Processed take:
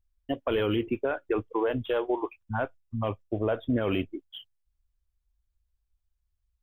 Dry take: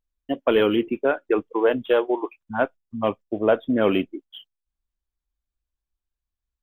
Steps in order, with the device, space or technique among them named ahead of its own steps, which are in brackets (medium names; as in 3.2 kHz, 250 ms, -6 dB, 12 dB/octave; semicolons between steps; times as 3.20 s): car stereo with a boomy subwoofer (resonant low shelf 140 Hz +10 dB, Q 1.5; peak limiter -16.5 dBFS, peak gain reduction 9 dB); trim -1.5 dB